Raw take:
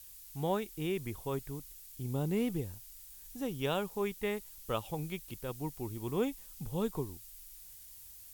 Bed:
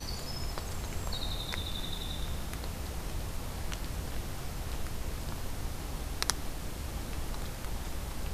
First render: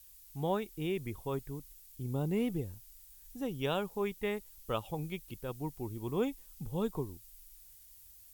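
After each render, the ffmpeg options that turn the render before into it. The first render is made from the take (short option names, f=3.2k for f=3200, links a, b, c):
-af "afftdn=nr=6:nf=-52"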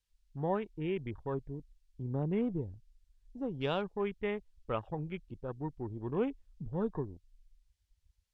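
-af "afwtdn=0.00447,lowpass=4.4k"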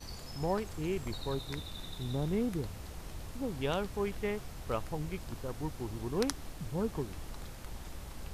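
-filter_complex "[1:a]volume=-7dB[a];[0:a][a]amix=inputs=2:normalize=0"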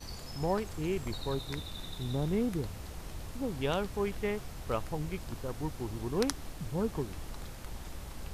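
-af "volume=1.5dB"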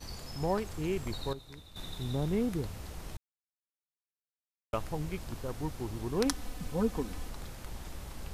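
-filter_complex "[0:a]asettb=1/sr,asplit=3[a][b][c];[a]atrim=end=6.254[d];[b]atrim=start=6.25:end=7.28,asetpts=PTS-STARTPTS,afade=t=in:d=0.004:c=qsin,afade=t=out:st=1.026:d=0.004:c=qsin,aecho=1:1:4:0.65,atrim=end_sample=45423[e];[c]atrim=start=7.276[f];[d][e]acrossfade=d=0.004:c1=hsin:c2=qsin[g];[g][f]acrossfade=d=0.004:c1=qsin:c2=hsin,asplit=5[h][i][j][k][l];[h]atrim=end=1.332[m];[i]atrim=start=1.328:end=1.762,asetpts=PTS-STARTPTS,volume=-11.5dB[n];[j]atrim=start=1.758:end=3.17,asetpts=PTS-STARTPTS,afade=t=out:st=1.408:d=0.004:c=hsin[o];[k]atrim=start=3.17:end=4.73,asetpts=PTS-STARTPTS,volume=0[p];[l]atrim=start=4.73,asetpts=PTS-STARTPTS,afade=t=in:d=0.004:c=hsin[q];[m][n]acrossfade=d=0.004:c1=hsin:c2=hsin[r];[o][p][q]concat=n=3:v=0:a=1[s];[r][s]acrossfade=d=0.004:c1=hsin:c2=hsin"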